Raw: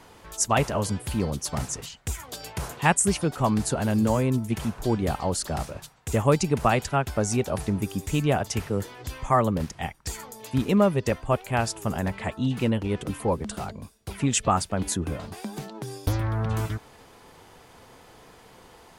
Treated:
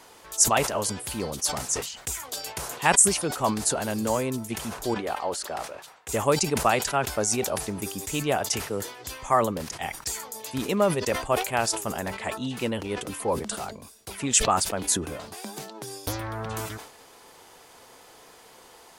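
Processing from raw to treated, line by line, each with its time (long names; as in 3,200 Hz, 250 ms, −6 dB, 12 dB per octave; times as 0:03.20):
0:04.94–0:06.09: bass and treble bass −12 dB, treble −11 dB
whole clip: bass and treble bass −11 dB, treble +6 dB; level that may fall only so fast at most 93 dB per second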